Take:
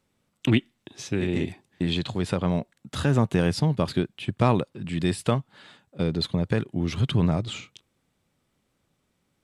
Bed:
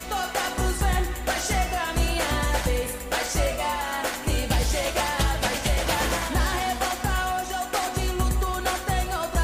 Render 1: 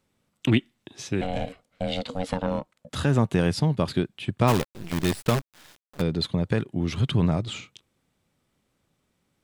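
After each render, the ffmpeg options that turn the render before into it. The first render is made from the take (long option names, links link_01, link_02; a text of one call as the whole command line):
ffmpeg -i in.wav -filter_complex "[0:a]asettb=1/sr,asplit=3[link_01][link_02][link_03];[link_01]atrim=end=1.214[link_04];[link_02]atrim=start=1.21:end=2.9,asetpts=PTS-STARTPTS,afade=type=in:duration=0.004:curve=qsin,afade=type=out:start_time=1.686:duration=0.004:curve=qsin,aeval=exprs='val(0)*sin(2*PI*370*n/s)':channel_layout=same[link_05];[link_03]atrim=start=2.896[link_06];[link_04][link_05]acrossfade=duration=0.004:curve1=hsin:curve2=qsin[link_07];[link_07][link_06]acrossfade=duration=0.004:curve1=qsin:curve2=hsin,asplit=3[link_08][link_09][link_10];[link_08]afade=type=out:start_time=4.47:duration=0.02[link_11];[link_09]acrusher=bits=5:dc=4:mix=0:aa=0.000001,afade=type=in:start_time=4.47:duration=0.02,afade=type=out:start_time=6:duration=0.02[link_12];[link_10]afade=type=in:start_time=6:duration=0.02[link_13];[link_11][link_12][link_13]amix=inputs=3:normalize=0" out.wav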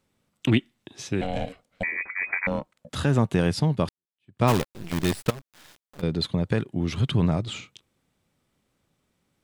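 ffmpeg -i in.wav -filter_complex "[0:a]asettb=1/sr,asplit=3[link_01][link_02][link_03];[link_01]atrim=end=1.834[link_04];[link_02]atrim=start=1.83:end=2.47,asetpts=PTS-STARTPTS,afade=type=in:duration=0.004:curve=qsin,afade=type=out:start_time=0.636:duration=0.004:curve=qsin,lowpass=frequency=2100:width_type=q:width=0.5098,lowpass=frequency=2100:width_type=q:width=0.6013,lowpass=frequency=2100:width_type=q:width=0.9,lowpass=frequency=2100:width_type=q:width=2.563,afreqshift=-2500[link_05];[link_03]atrim=start=2.466[link_06];[link_04][link_05]acrossfade=duration=0.004:curve1=hsin:curve2=qsin[link_07];[link_07][link_06]acrossfade=duration=0.004:curve1=qsin:curve2=hsin,asettb=1/sr,asplit=3[link_08][link_09][link_10];[link_08]atrim=end=5.304[link_11];[link_09]atrim=start=5.3:end=6.03,asetpts=PTS-STARTPTS,afade=type=in:duration=0.004:curve=qsin,afade=type=out:start_time=0.726:duration=0.004:curve=qsin,acompressor=threshold=-33dB:ratio=20:attack=3.2:release=140:knee=1:detection=peak[link_12];[link_10]atrim=start=6.026[link_13];[link_11][link_12]acrossfade=duration=0.004:curve1=hsin:curve2=qsin[link_14];[link_14][link_13]acrossfade=duration=0.004:curve1=qsin:curve2=hsin,asplit=2[link_15][link_16];[link_15]atrim=end=3.89,asetpts=PTS-STARTPTS,afade=type=out:start_time=3.886:duration=0.004:curve=hsin[link_17];[link_16]atrim=start=3.89,asetpts=PTS-STARTPTS,afade=type=in:duration=0.54:curve=exp[link_18];[link_17][link_18]concat=n=2:v=0:a=1" out.wav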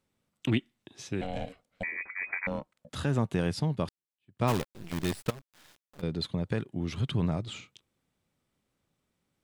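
ffmpeg -i in.wav -af "volume=-6.5dB" out.wav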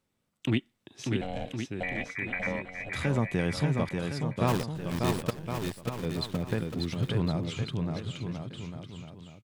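ffmpeg -i in.wav -af "aecho=1:1:590|1062|1440|1742|1983:0.631|0.398|0.251|0.158|0.1" out.wav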